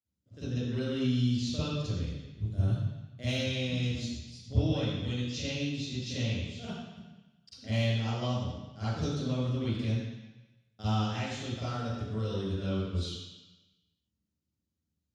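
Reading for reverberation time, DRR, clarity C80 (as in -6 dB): 1.0 s, -13.5 dB, 0.0 dB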